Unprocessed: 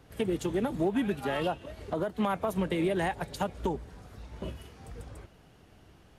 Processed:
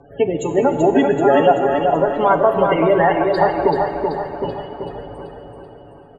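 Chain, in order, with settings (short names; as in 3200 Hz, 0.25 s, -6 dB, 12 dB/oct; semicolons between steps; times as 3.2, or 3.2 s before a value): notch 6000 Hz, Q 9.3; loudest bins only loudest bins 32; steep low-pass 8900 Hz 36 dB/oct; high shelf 3000 Hz +10 dB; comb 7.1 ms, depth 63%; plate-style reverb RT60 3.6 s, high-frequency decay 0.8×, DRR 7 dB; 1.73–4.27 added noise brown -52 dBFS; bell 690 Hz +13 dB 2.6 oct; feedback echo 0.383 s, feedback 49%, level -5 dB; gain +2.5 dB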